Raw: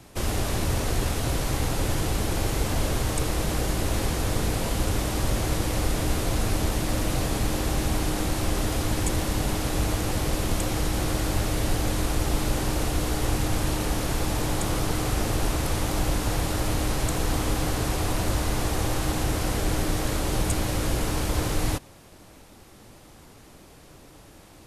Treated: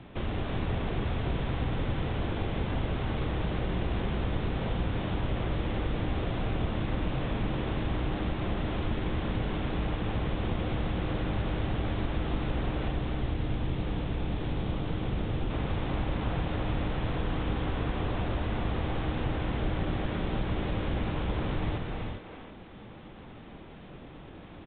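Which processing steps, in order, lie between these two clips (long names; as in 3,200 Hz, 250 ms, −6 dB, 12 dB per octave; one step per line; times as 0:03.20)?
0:12.91–0:15.51: parametric band 1,200 Hz −5.5 dB 2.7 octaves
far-end echo of a speakerphone 330 ms, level −9 dB
reverb whose tail is shaped and stops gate 440 ms rising, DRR 5 dB
downward compressor 1.5 to 1, threshold −41 dBFS, peak gain reduction 9 dB
parametric band 190 Hz +4.5 dB 1.4 octaves
A-law companding 64 kbit/s 8,000 Hz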